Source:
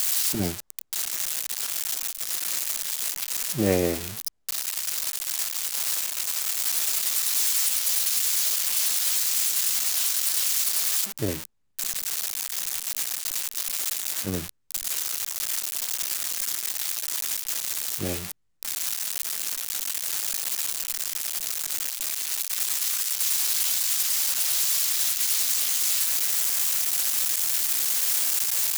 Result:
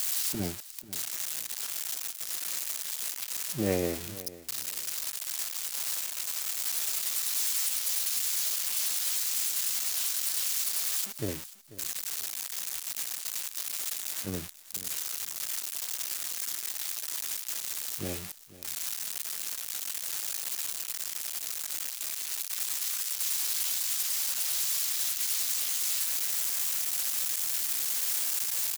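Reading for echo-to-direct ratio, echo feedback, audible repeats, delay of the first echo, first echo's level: -17.5 dB, 23%, 2, 0.49 s, -17.5 dB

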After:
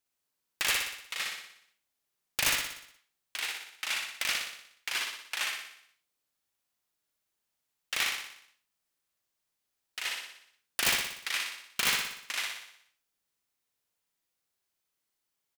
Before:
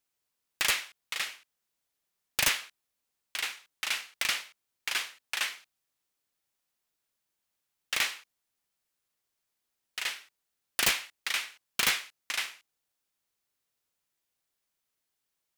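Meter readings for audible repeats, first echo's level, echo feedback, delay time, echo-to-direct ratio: 7, -3.5 dB, 55%, 60 ms, -2.0 dB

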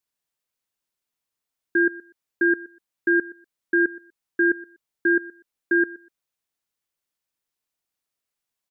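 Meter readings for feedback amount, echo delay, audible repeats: 18%, 0.122 s, 2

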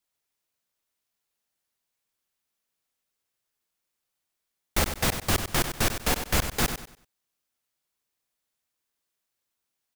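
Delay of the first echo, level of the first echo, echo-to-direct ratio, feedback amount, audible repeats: 96 ms, -9.0 dB, -8.5 dB, 31%, 3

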